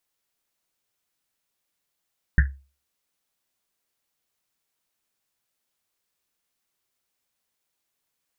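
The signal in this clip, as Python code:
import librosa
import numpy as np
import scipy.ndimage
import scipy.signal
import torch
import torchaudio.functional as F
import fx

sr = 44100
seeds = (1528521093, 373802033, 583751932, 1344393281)

y = fx.risset_drum(sr, seeds[0], length_s=1.1, hz=68.0, decay_s=0.34, noise_hz=1700.0, noise_width_hz=400.0, noise_pct=20)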